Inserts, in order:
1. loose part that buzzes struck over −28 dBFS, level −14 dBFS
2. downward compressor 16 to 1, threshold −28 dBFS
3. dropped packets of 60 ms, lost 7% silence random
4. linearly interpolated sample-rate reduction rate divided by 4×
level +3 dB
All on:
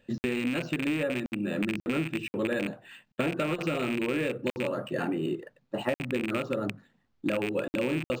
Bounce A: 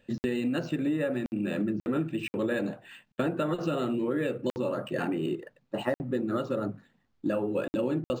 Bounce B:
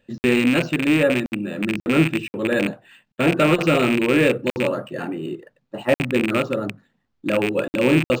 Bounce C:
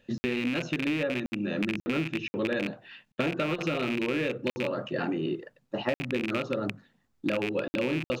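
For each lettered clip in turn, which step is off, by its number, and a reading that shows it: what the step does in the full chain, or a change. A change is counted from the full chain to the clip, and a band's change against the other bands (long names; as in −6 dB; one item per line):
1, 2 kHz band −5.5 dB
2, average gain reduction 8.0 dB
4, 8 kHz band −3.0 dB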